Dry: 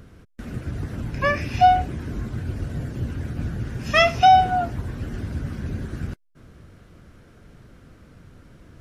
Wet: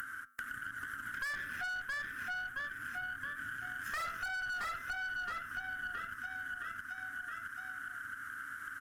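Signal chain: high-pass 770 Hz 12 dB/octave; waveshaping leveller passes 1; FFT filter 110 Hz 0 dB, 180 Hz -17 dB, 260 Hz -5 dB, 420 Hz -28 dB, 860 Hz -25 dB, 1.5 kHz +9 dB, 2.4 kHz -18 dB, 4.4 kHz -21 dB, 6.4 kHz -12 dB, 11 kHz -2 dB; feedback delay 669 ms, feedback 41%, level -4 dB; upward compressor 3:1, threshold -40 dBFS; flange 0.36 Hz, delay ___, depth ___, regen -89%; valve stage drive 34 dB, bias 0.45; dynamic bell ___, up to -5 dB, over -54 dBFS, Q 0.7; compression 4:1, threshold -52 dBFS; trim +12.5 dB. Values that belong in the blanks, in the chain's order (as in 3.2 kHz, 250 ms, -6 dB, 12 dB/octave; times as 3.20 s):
9.6 ms, 1.7 ms, 4.9 kHz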